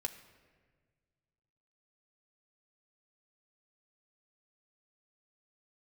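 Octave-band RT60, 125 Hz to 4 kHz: 2.6, 1.9, 1.8, 1.4, 1.4, 1.0 s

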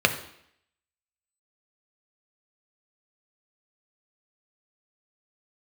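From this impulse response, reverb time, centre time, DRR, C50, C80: 0.70 s, 11 ms, 5.5 dB, 11.5 dB, 14.0 dB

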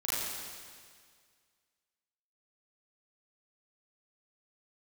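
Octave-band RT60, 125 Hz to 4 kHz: 2.0, 1.9, 1.9, 1.9, 1.9, 1.9 s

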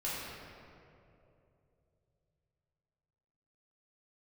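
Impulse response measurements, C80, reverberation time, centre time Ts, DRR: -0.5 dB, 2.9 s, 0.148 s, -9.5 dB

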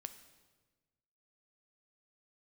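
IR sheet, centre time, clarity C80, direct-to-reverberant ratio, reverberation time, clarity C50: 10 ms, 13.5 dB, 9.5 dB, 1.3 s, 12.0 dB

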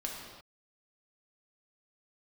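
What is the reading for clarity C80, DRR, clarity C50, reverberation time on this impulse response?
3.0 dB, -2.0 dB, 1.0 dB, not exponential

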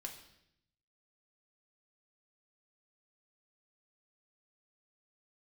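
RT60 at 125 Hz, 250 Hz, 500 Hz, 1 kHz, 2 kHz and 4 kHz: 1.2, 1.0, 0.80, 0.70, 0.75, 0.80 s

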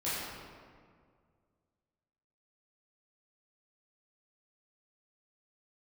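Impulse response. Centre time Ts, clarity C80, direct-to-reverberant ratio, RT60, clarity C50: 0.128 s, -0.5 dB, -12.0 dB, 2.0 s, -3.0 dB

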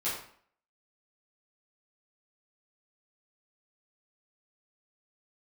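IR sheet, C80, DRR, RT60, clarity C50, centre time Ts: 6.5 dB, -10.5 dB, 0.55 s, 3.0 dB, 45 ms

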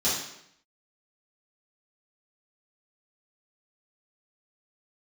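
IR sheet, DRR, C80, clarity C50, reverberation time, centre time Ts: -11.5 dB, 5.5 dB, 1.5 dB, 0.75 s, 54 ms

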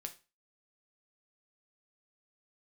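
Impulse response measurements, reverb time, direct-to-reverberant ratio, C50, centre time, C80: 0.30 s, 5.0 dB, 15.0 dB, 7 ms, 21.0 dB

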